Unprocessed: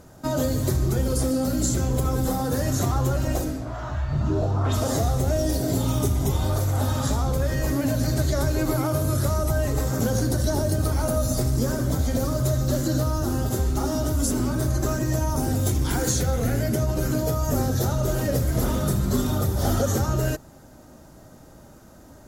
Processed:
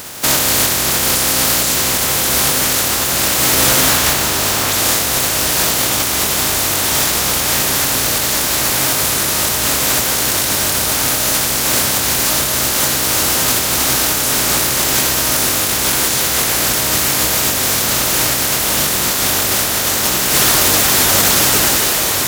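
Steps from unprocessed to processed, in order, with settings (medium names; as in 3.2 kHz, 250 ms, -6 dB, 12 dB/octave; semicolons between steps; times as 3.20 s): spectral contrast reduction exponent 0.18; high-pass 48 Hz; echo that smears into a reverb 1351 ms, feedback 44%, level -6 dB; compressor with a negative ratio -28 dBFS, ratio -1; loudness maximiser +14 dB; trim -1 dB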